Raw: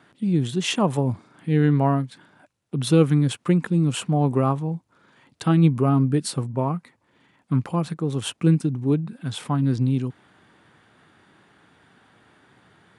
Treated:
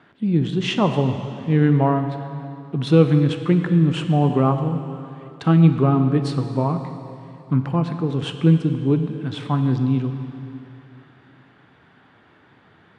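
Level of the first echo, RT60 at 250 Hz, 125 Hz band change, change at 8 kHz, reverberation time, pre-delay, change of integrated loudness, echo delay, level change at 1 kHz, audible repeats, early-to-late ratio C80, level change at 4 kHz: no echo audible, 2.7 s, +3.0 dB, below −10 dB, 2.8 s, 6 ms, +2.5 dB, no echo audible, +3.0 dB, no echo audible, 8.5 dB, 0.0 dB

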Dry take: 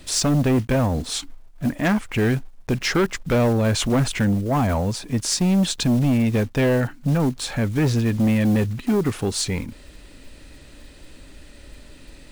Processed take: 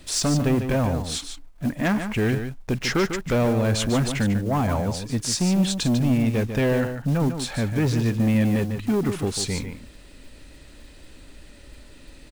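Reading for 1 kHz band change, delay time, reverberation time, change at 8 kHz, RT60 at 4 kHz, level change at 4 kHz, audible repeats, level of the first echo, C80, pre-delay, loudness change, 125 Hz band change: −2.0 dB, 147 ms, no reverb audible, −2.0 dB, no reverb audible, −2.0 dB, 1, −8.5 dB, no reverb audible, no reverb audible, −2.0 dB, −2.0 dB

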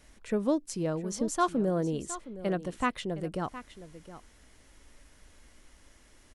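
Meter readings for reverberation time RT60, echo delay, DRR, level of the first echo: no reverb audible, 715 ms, no reverb audible, −14.5 dB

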